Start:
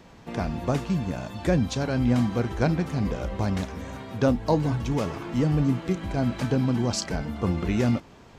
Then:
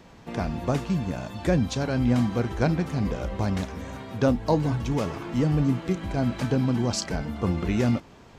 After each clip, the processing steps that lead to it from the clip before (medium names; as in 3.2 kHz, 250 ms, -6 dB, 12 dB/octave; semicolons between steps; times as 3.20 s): no audible change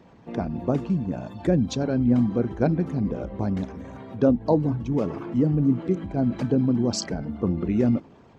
resonances exaggerated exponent 1.5; high-pass 130 Hz 6 dB/octave; dynamic bell 270 Hz, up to +5 dB, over -37 dBFS, Q 0.84